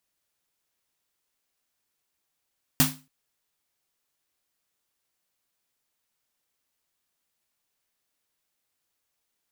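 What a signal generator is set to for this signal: snare drum length 0.28 s, tones 150 Hz, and 260 Hz, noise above 580 Hz, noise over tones 3 dB, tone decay 0.32 s, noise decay 0.28 s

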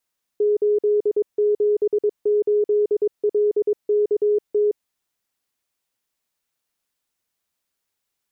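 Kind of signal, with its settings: Morse "878LKT" 22 wpm 417 Hz -15 dBFS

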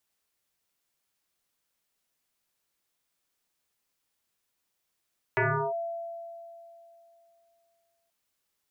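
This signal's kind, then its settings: FM tone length 2.73 s, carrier 675 Hz, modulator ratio 0.39, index 5.7, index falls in 0.36 s linear, decay 2.93 s, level -21 dB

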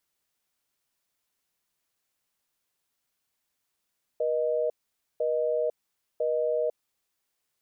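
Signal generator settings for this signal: call progress tone busy tone, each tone -26.5 dBFS 2.82 s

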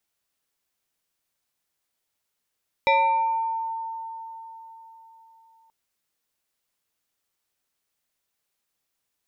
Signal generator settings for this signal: FM tone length 2.83 s, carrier 903 Hz, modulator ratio 1.61, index 1.3, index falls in 1.14 s exponential, decay 4.07 s, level -15 dB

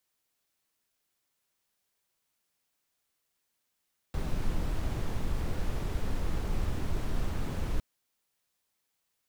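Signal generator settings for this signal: noise brown, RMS -29 dBFS 3.66 s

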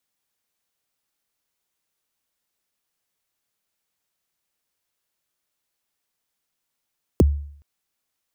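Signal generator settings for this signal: kick drum length 0.42 s, from 530 Hz, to 72 Hz, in 23 ms, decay 0.60 s, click on, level -8.5 dB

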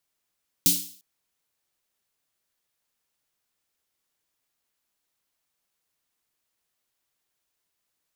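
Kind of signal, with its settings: snare drum length 0.35 s, tones 180 Hz, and 290 Hz, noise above 3400 Hz, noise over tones 10.5 dB, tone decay 0.39 s, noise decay 0.48 s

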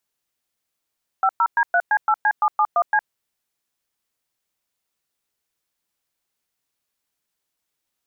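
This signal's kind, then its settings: DTMF "50D3C8C771C", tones 61 ms, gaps 0.109 s, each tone -17 dBFS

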